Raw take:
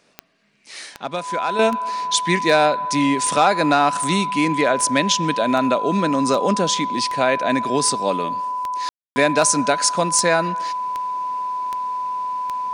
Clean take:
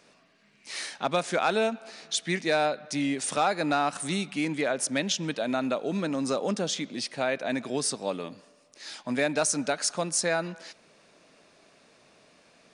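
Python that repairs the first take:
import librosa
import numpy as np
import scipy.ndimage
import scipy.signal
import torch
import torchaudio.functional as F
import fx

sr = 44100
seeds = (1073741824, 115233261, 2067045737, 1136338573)

y = fx.fix_declick_ar(x, sr, threshold=10.0)
y = fx.notch(y, sr, hz=1000.0, q=30.0)
y = fx.fix_ambience(y, sr, seeds[0], print_start_s=0.12, print_end_s=0.62, start_s=8.89, end_s=9.16)
y = fx.gain(y, sr, db=fx.steps((0.0, 0.0), (1.59, -9.0)))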